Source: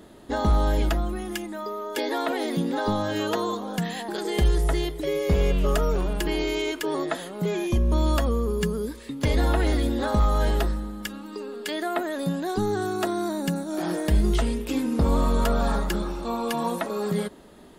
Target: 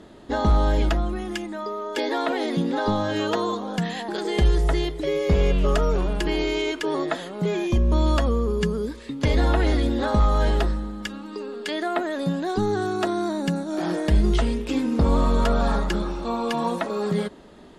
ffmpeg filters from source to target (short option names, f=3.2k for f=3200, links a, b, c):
-af "lowpass=6.6k,volume=2dB"